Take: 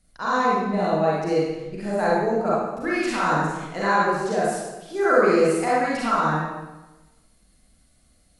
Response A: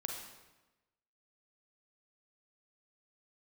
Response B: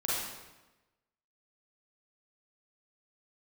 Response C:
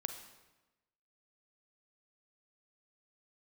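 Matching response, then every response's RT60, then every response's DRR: B; 1.1, 1.1, 1.1 s; 1.0, -7.5, 6.5 dB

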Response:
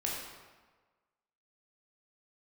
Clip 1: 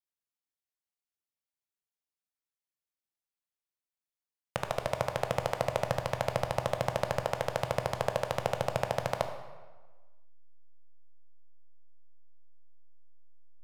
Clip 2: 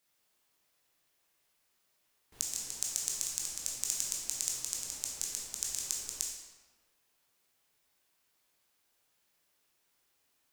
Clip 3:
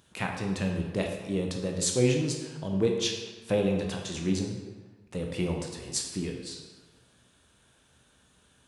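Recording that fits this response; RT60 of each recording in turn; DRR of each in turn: 2; 1.4, 1.4, 1.4 s; 6.0, -4.0, 1.0 dB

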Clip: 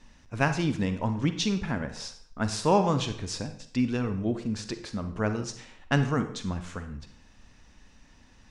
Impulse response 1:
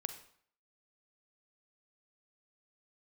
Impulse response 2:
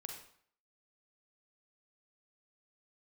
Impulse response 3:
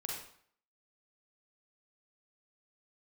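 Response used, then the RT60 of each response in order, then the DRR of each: 1; 0.60, 0.60, 0.60 s; 8.5, 2.0, -2.5 dB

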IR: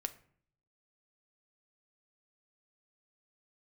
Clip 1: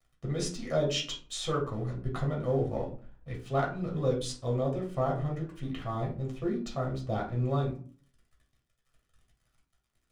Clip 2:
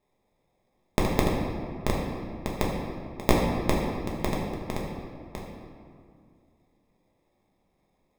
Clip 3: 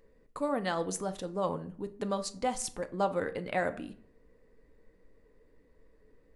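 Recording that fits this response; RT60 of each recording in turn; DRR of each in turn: 3; 0.40, 2.2, 0.55 s; -3.0, -3.5, 8.5 dB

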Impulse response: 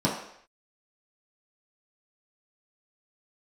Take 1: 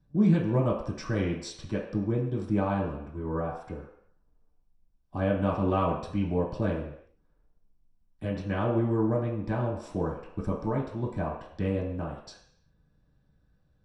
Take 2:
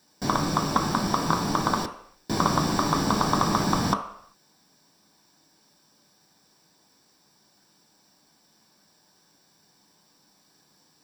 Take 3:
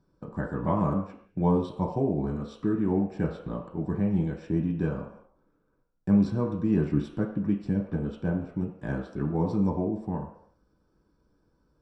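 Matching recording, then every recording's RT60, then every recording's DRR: 1; not exponential, not exponential, not exponential; -6.5, 3.5, -1.5 dB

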